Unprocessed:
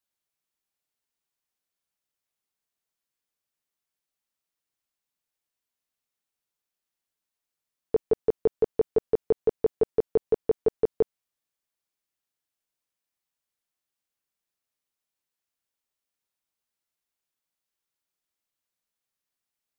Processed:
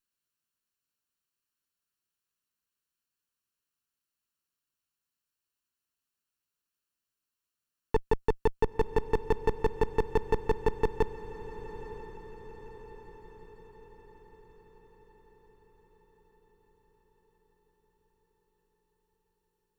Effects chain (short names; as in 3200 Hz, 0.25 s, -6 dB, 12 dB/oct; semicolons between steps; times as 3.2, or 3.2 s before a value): minimum comb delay 0.71 ms; dynamic EQ 880 Hz, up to -4 dB, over -37 dBFS, Q 2.9; diffused feedback echo 0.953 s, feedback 56%, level -13 dB